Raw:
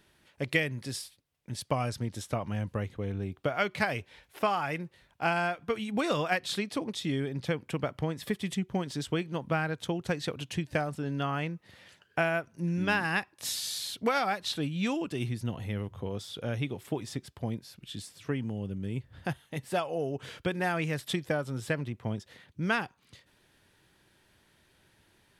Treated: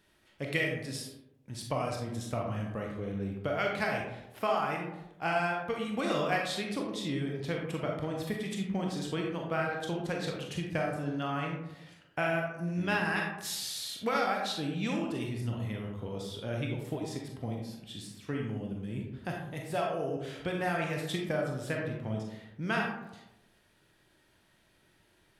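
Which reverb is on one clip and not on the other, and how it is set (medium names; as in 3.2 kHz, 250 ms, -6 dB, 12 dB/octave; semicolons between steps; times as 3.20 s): algorithmic reverb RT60 0.93 s, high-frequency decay 0.4×, pre-delay 0 ms, DRR -0.5 dB; trim -4.5 dB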